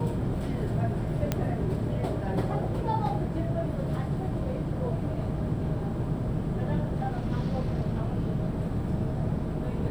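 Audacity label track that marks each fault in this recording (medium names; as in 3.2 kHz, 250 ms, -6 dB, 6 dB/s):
1.320000	1.320000	pop -12 dBFS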